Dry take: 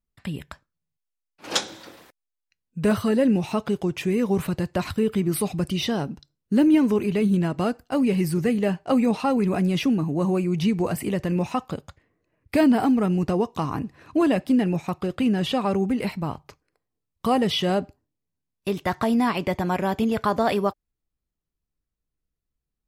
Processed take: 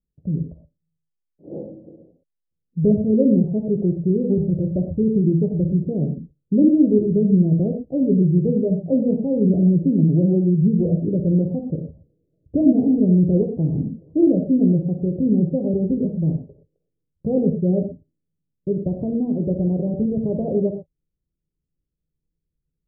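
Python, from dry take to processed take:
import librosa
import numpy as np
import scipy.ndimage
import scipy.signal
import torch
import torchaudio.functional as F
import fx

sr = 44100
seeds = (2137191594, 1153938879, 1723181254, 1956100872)

y = scipy.signal.sosfilt(scipy.signal.butter(8, 560.0, 'lowpass', fs=sr, output='sos'), x)
y = fx.peak_eq(y, sr, hz=160.0, db=7.5, octaves=0.34)
y = fx.rev_gated(y, sr, seeds[0], gate_ms=140, shape='flat', drr_db=3.5)
y = F.gain(torch.from_numpy(y), 1.5).numpy()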